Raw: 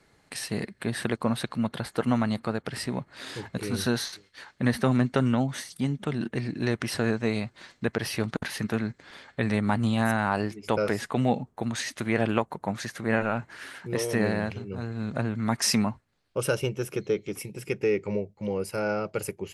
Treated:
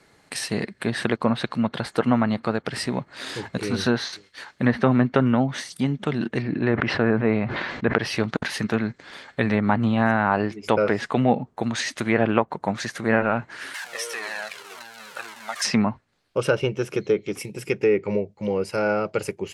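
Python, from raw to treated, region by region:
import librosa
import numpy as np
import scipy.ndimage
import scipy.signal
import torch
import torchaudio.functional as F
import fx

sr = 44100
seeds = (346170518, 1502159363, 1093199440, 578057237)

y = fx.chain(x, sr, fx.lowpass(hz=2400.0, slope=12),
    fx.sustainer(db_per_s=33.0), at=(6.42, 7.96))
y = fx.chain(y, sr, fx.zero_step(step_db=-30.5),
    fx.highpass(hz=950.0, slope=12),
    fx.comb_cascade(direction='falling', hz=1.9), at=(13.74, 15.65))
y = fx.env_lowpass_down(y, sr, base_hz=2300.0, full_db=-20.5)
y = fx.low_shelf(y, sr, hz=110.0, db=-8.0)
y = F.gain(torch.from_numpy(y), 6.0).numpy()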